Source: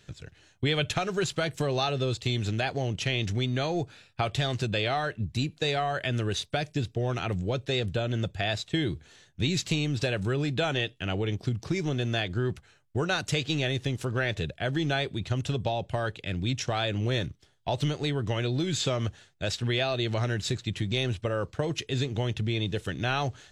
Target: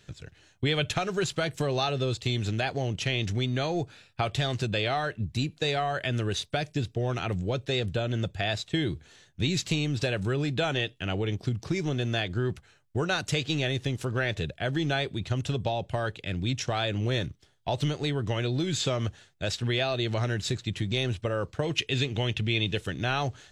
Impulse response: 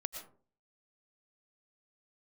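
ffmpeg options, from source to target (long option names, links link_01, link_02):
-filter_complex "[0:a]asettb=1/sr,asplit=3[link_01][link_02][link_03];[link_01]atrim=end=21.654[link_04];[link_02]atrim=start=21.65:end=22.79,asetpts=PTS-STARTPTS,afade=type=in:duration=0.004:curve=qsin,afade=type=out:start_time=1.136:duration=0.004:curve=qsin,equalizer=frequency=2700:width=1.5:gain=8.5[link_05];[link_03]atrim=start=22.786[link_06];[link_04][link_05]acrossfade=duration=0.004:curve1=hsin:curve2=qsin[link_07];[link_07][link_06]acrossfade=duration=0.004:curve1=qsin:curve2=hsin"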